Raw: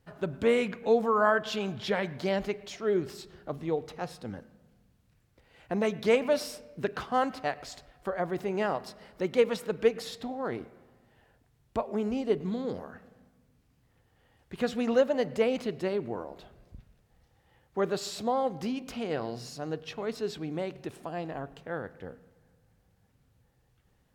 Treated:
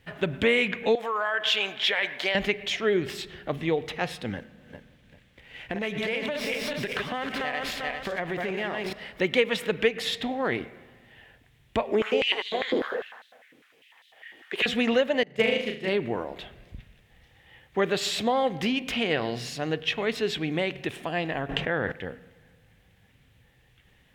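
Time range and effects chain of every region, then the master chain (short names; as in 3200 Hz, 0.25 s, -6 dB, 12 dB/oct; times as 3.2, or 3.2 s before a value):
0.95–2.35 HPF 550 Hz + compressor, threshold -30 dBFS
4.37–8.93 regenerating reverse delay 0.197 s, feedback 48%, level -4 dB + compressor 16:1, threshold -33 dBFS + running maximum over 3 samples
11.92–14.66 feedback echo 78 ms, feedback 52%, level -4 dB + stepped high-pass 10 Hz 320–3900 Hz
15.23–15.89 flutter echo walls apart 6.3 m, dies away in 0.86 s + upward expander 2.5:1, over -34 dBFS
21.49–21.92 LPF 3100 Hz 6 dB/oct + fast leveller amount 70%
whole clip: band shelf 2500 Hz +11 dB 1.3 oct; compressor 2.5:1, threshold -27 dBFS; gain +6 dB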